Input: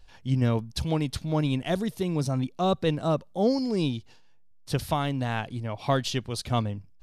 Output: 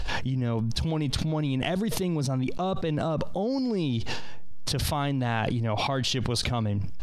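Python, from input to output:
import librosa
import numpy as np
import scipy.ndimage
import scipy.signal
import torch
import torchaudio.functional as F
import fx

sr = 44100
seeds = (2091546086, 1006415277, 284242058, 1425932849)

y = fx.high_shelf(x, sr, hz=8000.0, db=-11.5)
y = fx.env_flatten(y, sr, amount_pct=100)
y = F.gain(torch.from_numpy(y), -7.0).numpy()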